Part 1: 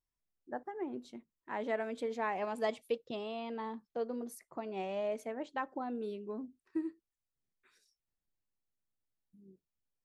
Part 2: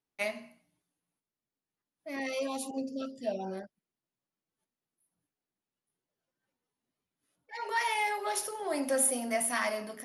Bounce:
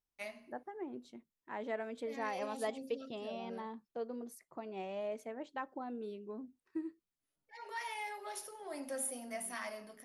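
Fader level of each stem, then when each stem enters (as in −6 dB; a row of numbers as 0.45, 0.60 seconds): −4.0, −11.5 decibels; 0.00, 0.00 seconds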